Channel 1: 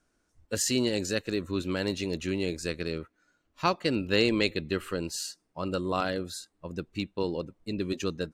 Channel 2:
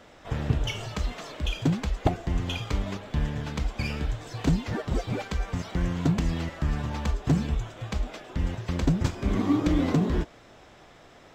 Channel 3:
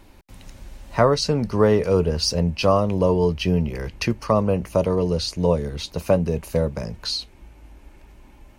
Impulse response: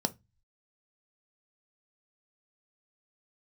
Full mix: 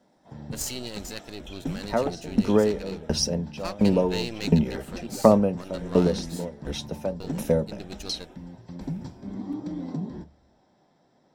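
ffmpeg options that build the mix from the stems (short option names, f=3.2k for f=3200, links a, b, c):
-filter_complex "[0:a]aeval=exprs='if(lt(val(0),0),0.251*val(0),val(0))':c=same,highshelf=f=3.8k:g=11,volume=-8dB,asplit=3[a][b][c];[a]atrim=end=6.67,asetpts=PTS-STARTPTS,afade=t=out:st=6.666:d=0.004:c=hsin[d];[b]atrim=start=6.67:end=7.2,asetpts=PTS-STARTPTS,volume=0[e];[c]atrim=start=7.2,asetpts=PTS-STARTPTS,afade=t=in:d=0.004:c=hsin[f];[d][e][f]concat=n=3:v=0:a=1,asplit=2[g][h];[1:a]volume=-15dB,asplit=2[i][j];[j]volume=-6dB[k];[2:a]aeval=exprs='val(0)*pow(10,-30*if(lt(mod(1.4*n/s,1),2*abs(1.4)/1000),1-mod(1.4*n/s,1)/(2*abs(1.4)/1000),(mod(1.4*n/s,1)-2*abs(1.4)/1000)/(1-2*abs(1.4)/1000))/20)':c=same,adelay=950,volume=0.5dB,asplit=2[l][m];[m]volume=-9.5dB[n];[h]apad=whole_len=500479[o];[i][o]sidechaingate=range=-33dB:threshold=-52dB:ratio=16:detection=peak[p];[3:a]atrim=start_sample=2205[q];[k][n]amix=inputs=2:normalize=0[r];[r][q]afir=irnorm=-1:irlink=0[s];[g][p][l][s]amix=inputs=4:normalize=0"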